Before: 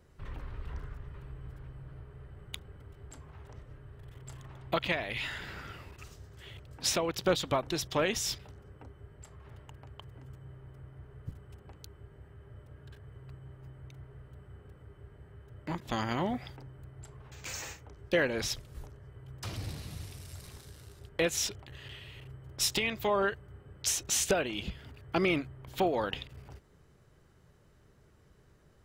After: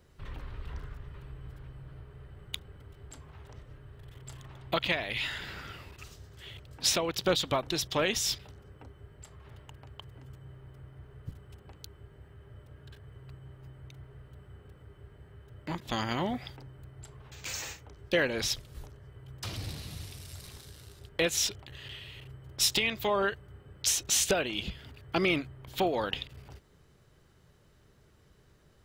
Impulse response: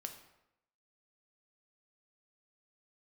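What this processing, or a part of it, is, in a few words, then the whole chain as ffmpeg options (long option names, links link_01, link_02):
presence and air boost: -af "equalizer=frequency=3700:width_type=o:width=1.2:gain=5,highshelf=frequency=11000:gain=5"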